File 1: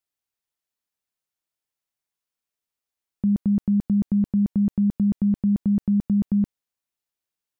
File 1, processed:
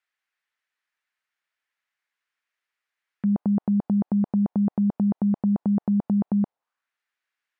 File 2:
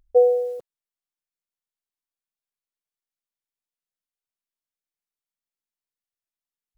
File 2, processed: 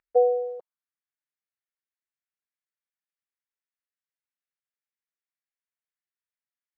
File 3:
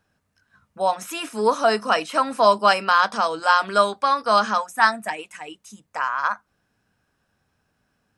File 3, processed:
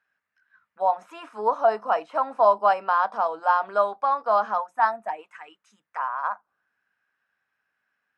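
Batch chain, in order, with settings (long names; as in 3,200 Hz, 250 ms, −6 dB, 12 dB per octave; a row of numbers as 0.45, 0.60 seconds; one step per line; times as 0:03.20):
low-shelf EQ 430 Hz +3 dB
envelope filter 790–1,800 Hz, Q 2.2, down, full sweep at −23 dBFS
loudness normalisation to −24 LKFS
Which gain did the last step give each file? +14.5, +2.0, +0.5 decibels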